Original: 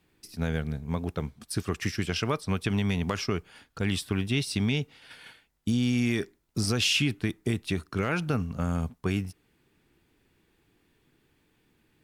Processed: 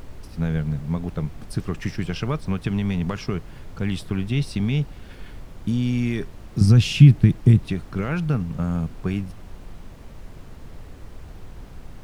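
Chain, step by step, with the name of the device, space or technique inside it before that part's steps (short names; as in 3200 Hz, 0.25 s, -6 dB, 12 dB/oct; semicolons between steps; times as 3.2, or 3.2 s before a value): 6.61–7.68 tone controls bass +14 dB, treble +2 dB; car interior (bell 150 Hz +9 dB 0.74 oct; high shelf 3800 Hz -7.5 dB; brown noise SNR 14 dB)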